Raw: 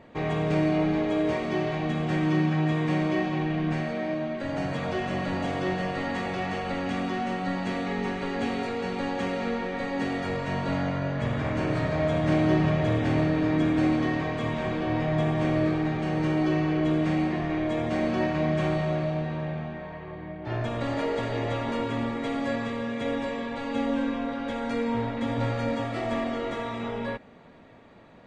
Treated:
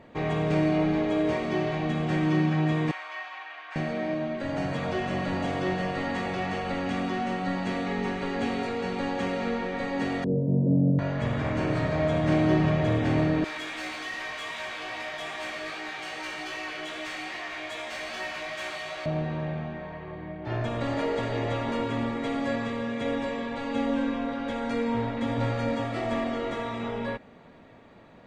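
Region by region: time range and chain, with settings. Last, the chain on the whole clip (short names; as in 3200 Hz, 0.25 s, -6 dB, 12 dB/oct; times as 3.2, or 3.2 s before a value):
2.91–3.76 HPF 970 Hz 24 dB/oct + high shelf 4000 Hz -10.5 dB
10.24–10.99 elliptic band-pass 130–520 Hz, stop band 80 dB + low shelf 300 Hz +12 dB
13.44–19.06 differentiator + overdrive pedal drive 28 dB, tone 2900 Hz, clips at -22 dBFS + chorus 2.5 Hz, delay 16 ms, depth 3 ms
whole clip: dry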